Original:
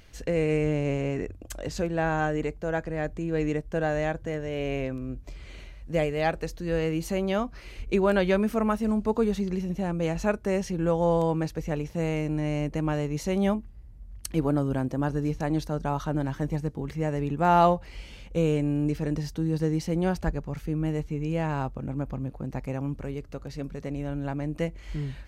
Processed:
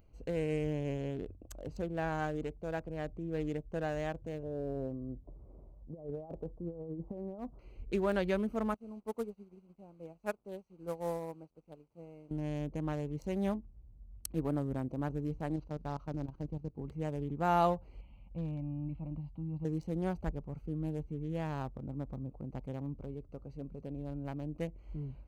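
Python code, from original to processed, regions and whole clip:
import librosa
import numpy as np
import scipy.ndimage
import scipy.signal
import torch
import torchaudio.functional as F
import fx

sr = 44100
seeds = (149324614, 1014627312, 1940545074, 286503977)

y = fx.chain(x, sr, fx.lowpass(hz=1000.0, slope=24),
    fx.low_shelf(hz=85.0, db=-5.5),
    fx.over_compress(threshold_db=-30.0, ratio=-0.5), at=(4.43, 7.59))
y = fx.chain(y, sr, fx.delta_mod(bps=64000, step_db=-33.5),
    fx.low_shelf(hz=150.0, db=-11.5),
    fx.upward_expand(threshold_db=-38.0, expansion=2.5), at=(8.74, 12.31))
y = fx.chain(y, sr, fx.cvsd(bps=32000),
    fx.low_shelf(hz=92.0, db=4.5),
    fx.level_steps(step_db=14), at=(15.56, 16.78))
y = fx.chain(y, sr, fx.lowpass(hz=3700.0, slope=12),
    fx.fixed_phaser(hz=1600.0, stages=6), at=(18.01, 19.65))
y = fx.wiener(y, sr, points=25)
y = fx.high_shelf(y, sr, hz=11000.0, db=11.5)
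y = y * 10.0 ** (-8.5 / 20.0)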